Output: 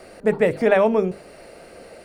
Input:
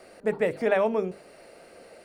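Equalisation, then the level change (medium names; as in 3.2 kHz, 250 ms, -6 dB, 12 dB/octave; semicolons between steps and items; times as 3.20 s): bass shelf 140 Hz +9 dB; +6.0 dB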